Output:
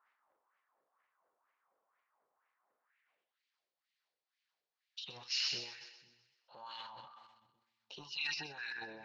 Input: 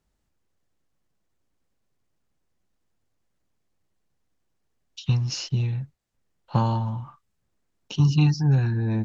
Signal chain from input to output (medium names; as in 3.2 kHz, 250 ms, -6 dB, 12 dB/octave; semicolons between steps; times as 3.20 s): dynamic bell 1.8 kHz, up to +3 dB, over -46 dBFS, Q 2.1; wah-wah 2.1 Hz 480–2300 Hz, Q 2.7; in parallel at -3 dB: compression, threshold -48 dBFS, peak gain reduction 19 dB; on the sum: peak limiter -31.5 dBFS, peak gain reduction 11 dB; on a send: two-band feedback delay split 310 Hz, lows 493 ms, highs 127 ms, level -13.5 dB; on the sum: band-pass sweep 1.1 kHz -> 4.3 kHz, 2.69–3.43 s; transient shaper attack -2 dB, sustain +11 dB; trim +12 dB